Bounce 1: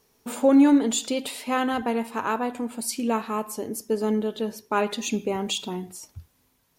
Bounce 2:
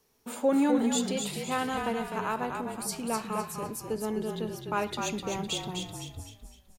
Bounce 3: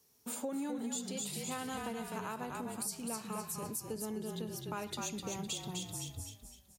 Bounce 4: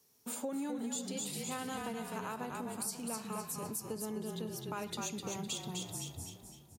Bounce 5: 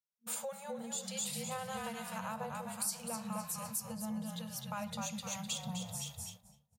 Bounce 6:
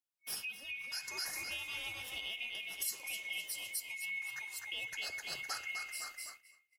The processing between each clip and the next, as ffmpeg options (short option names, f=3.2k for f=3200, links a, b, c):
-filter_complex "[0:a]asubboost=boost=6.5:cutoff=110,acrossover=split=260|770|2000[a][b][c][d];[a]asoftclip=type=tanh:threshold=-32dB[e];[e][b][c][d]amix=inputs=4:normalize=0,asplit=6[f][g][h][i][j][k];[g]adelay=254,afreqshift=-41,volume=-5dB[l];[h]adelay=508,afreqshift=-82,volume=-13dB[m];[i]adelay=762,afreqshift=-123,volume=-20.9dB[n];[j]adelay=1016,afreqshift=-164,volume=-28.9dB[o];[k]adelay=1270,afreqshift=-205,volume=-36.8dB[p];[f][l][m][n][o][p]amix=inputs=6:normalize=0,volume=-5dB"
-af "highpass=70,bass=f=250:g=5,treble=f=4k:g=10,acompressor=threshold=-30dB:ratio=6,volume=-6dB"
-filter_complex "[0:a]highpass=80,asplit=2[a][b];[b]adelay=543,lowpass=f=1.3k:p=1,volume=-13.5dB,asplit=2[c][d];[d]adelay=543,lowpass=f=1.3k:p=1,volume=0.44,asplit=2[e][f];[f]adelay=543,lowpass=f=1.3k:p=1,volume=0.44,asplit=2[g][h];[h]adelay=543,lowpass=f=1.3k:p=1,volume=0.44[i];[a][c][e][g][i]amix=inputs=5:normalize=0"
-filter_complex "[0:a]agate=range=-33dB:threshold=-45dB:ratio=3:detection=peak,afftfilt=real='re*(1-between(b*sr/4096,230,460))':imag='im*(1-between(b*sr/4096,230,460))':win_size=4096:overlap=0.75,acrossover=split=1000[a][b];[a]aeval=exprs='val(0)*(1-0.5/2+0.5/2*cos(2*PI*1.2*n/s))':c=same[c];[b]aeval=exprs='val(0)*(1-0.5/2-0.5/2*cos(2*PI*1.2*n/s))':c=same[d];[c][d]amix=inputs=2:normalize=0,volume=3dB"
-af "afftfilt=real='real(if(lt(b,920),b+92*(1-2*mod(floor(b/92),2)),b),0)':imag='imag(if(lt(b,920),b+92*(1-2*mod(floor(b/92),2)),b),0)':win_size=2048:overlap=0.75,volume=-1.5dB"